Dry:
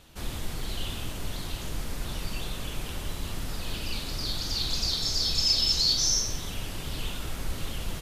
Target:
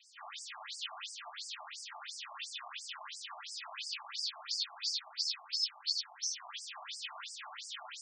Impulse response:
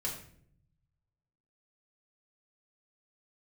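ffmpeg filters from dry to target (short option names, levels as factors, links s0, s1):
-filter_complex "[0:a]highpass=240,bandreject=f=432.7:t=h:w=4,bandreject=f=865.4:t=h:w=4,acrossover=split=400[s0][s1];[s1]acompressor=threshold=0.02:ratio=2.5[s2];[s0][s2]amix=inputs=2:normalize=0,acrusher=bits=8:mix=0:aa=0.000001[s3];[1:a]atrim=start_sample=2205,afade=t=out:st=0.34:d=0.01,atrim=end_sample=15435,asetrate=48510,aresample=44100[s4];[s3][s4]afir=irnorm=-1:irlink=0,afftfilt=real='re*between(b*sr/1024,850*pow(6700/850,0.5+0.5*sin(2*PI*2.9*pts/sr))/1.41,850*pow(6700/850,0.5+0.5*sin(2*PI*2.9*pts/sr))*1.41)':imag='im*between(b*sr/1024,850*pow(6700/850,0.5+0.5*sin(2*PI*2.9*pts/sr))/1.41,850*pow(6700/850,0.5+0.5*sin(2*PI*2.9*pts/sr))*1.41)':win_size=1024:overlap=0.75,volume=1.12"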